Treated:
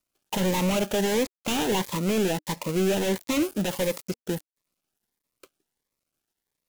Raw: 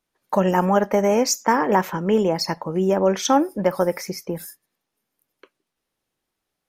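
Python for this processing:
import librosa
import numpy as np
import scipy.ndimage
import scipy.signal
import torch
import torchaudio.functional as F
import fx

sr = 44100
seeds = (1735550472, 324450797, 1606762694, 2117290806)

y = fx.dead_time(x, sr, dead_ms=0.24)
y = fx.high_shelf(y, sr, hz=4200.0, db=9.5)
y = np.clip(10.0 ** (18.5 / 20.0) * y, -1.0, 1.0) / 10.0 ** (18.5 / 20.0)
y = fx.notch_cascade(y, sr, direction='rising', hz=1.5)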